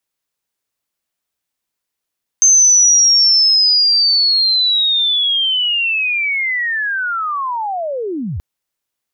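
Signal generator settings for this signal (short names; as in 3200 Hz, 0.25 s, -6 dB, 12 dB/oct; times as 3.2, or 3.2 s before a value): chirp linear 6300 Hz -> 63 Hz -6 dBFS -> -19.5 dBFS 5.98 s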